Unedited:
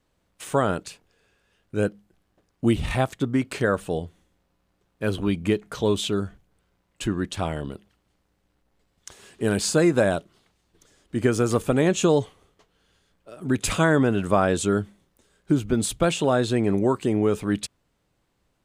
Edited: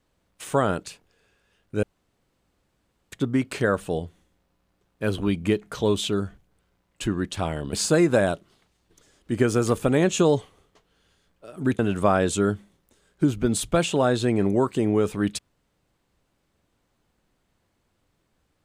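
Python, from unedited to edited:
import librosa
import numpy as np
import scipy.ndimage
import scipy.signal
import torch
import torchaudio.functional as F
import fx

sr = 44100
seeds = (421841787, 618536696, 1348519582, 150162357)

y = fx.edit(x, sr, fx.room_tone_fill(start_s=1.83, length_s=1.29),
    fx.cut(start_s=7.73, length_s=1.84),
    fx.cut(start_s=13.63, length_s=0.44), tone=tone)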